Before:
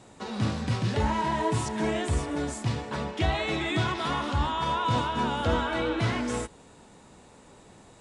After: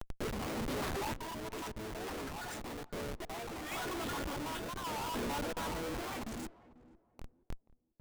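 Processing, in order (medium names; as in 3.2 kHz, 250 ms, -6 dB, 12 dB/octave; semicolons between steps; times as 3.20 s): random holes in the spectrogram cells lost 41%; steep high-pass 260 Hz 36 dB/octave; spectral selection erased 6.25–6.97 s, 340–6400 Hz; reverse; compression 5:1, threshold -43 dBFS, peak gain reduction 17.5 dB; reverse; Schmitt trigger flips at -46 dBFS; random-step tremolo; on a send: filtered feedback delay 483 ms, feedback 30%, low-pass 850 Hz, level -18 dB; on the sum: warped record 45 rpm, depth 160 cents; trim +10 dB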